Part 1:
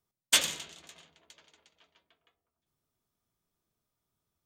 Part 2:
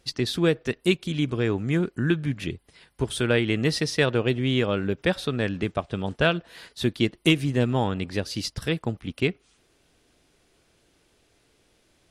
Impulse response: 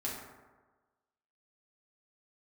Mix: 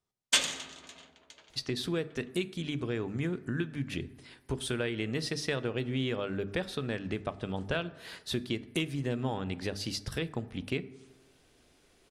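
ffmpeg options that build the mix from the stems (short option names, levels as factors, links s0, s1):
-filter_complex "[0:a]lowpass=8300,volume=0.708,asplit=2[s0][s1];[s1]volume=0.335[s2];[1:a]bandreject=f=50:t=h:w=6,bandreject=f=100:t=h:w=6,bandreject=f=150:t=h:w=6,bandreject=f=200:t=h:w=6,bandreject=f=250:t=h:w=6,bandreject=f=300:t=h:w=6,acompressor=threshold=0.0224:ratio=2.5,adelay=1500,volume=0.531,asplit=2[s3][s4];[s4]volume=0.178[s5];[2:a]atrim=start_sample=2205[s6];[s2][s5]amix=inputs=2:normalize=0[s7];[s7][s6]afir=irnorm=-1:irlink=0[s8];[s0][s3][s8]amix=inputs=3:normalize=0,dynaudnorm=f=430:g=3:m=1.58"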